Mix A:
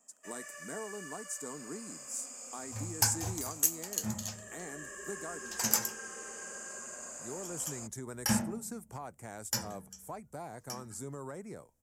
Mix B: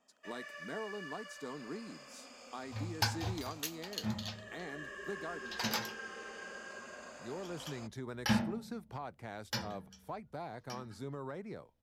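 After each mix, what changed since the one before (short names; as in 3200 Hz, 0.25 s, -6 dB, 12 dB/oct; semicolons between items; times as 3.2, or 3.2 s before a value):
master: add resonant high shelf 5500 Hz -13 dB, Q 3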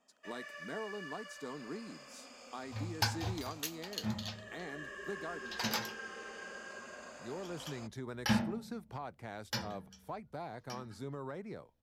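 none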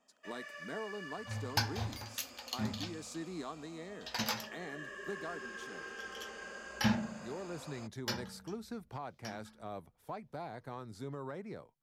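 second sound: entry -1.45 s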